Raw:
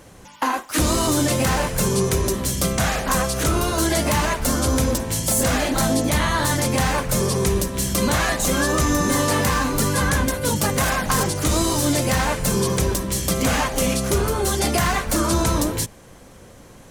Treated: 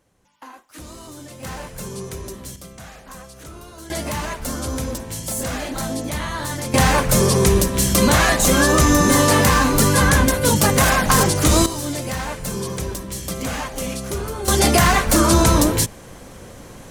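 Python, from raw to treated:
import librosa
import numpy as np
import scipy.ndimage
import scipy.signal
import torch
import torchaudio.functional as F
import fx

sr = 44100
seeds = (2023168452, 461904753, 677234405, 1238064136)

y = fx.gain(x, sr, db=fx.steps((0.0, -19.0), (1.43, -11.5), (2.56, -18.5), (3.9, -6.0), (6.74, 5.0), (11.66, -6.0), (14.48, 5.5)))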